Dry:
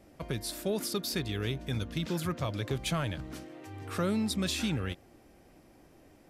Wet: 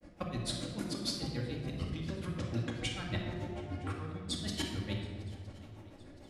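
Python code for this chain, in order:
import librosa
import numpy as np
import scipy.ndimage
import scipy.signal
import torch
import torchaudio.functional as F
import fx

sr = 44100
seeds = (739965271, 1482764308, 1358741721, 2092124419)

y = scipy.signal.sosfilt(scipy.signal.butter(8, 11000.0, 'lowpass', fs=sr, output='sos'), x)
y = fx.high_shelf(y, sr, hz=4500.0, db=-6.0)
y = fx.over_compress(y, sr, threshold_db=-37.0, ratio=-1.0)
y = fx.granulator(y, sr, seeds[0], grain_ms=114.0, per_s=6.8, spray_ms=11.0, spread_st=3)
y = fx.echo_swing(y, sr, ms=965, ratio=3, feedback_pct=51, wet_db=-23)
y = fx.room_shoebox(y, sr, seeds[1], volume_m3=1800.0, walls='mixed', distance_m=2.3)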